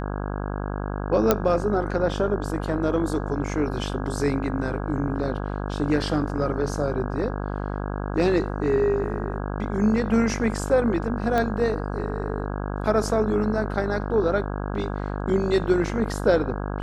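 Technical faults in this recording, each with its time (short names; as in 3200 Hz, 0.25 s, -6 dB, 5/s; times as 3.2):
buzz 50 Hz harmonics 33 -29 dBFS
1.31 pop -3 dBFS
11.38 pop -12 dBFS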